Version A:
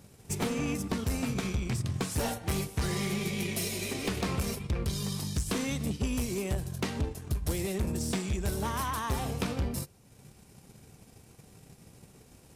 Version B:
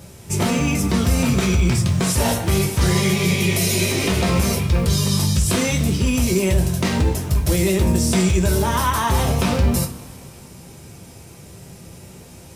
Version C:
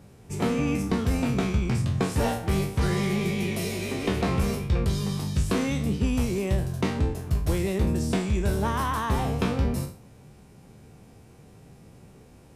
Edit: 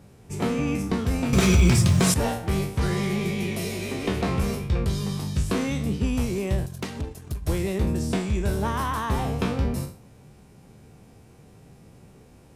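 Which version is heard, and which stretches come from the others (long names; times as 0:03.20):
C
0:01.33–0:02.14: punch in from B
0:06.66–0:07.47: punch in from A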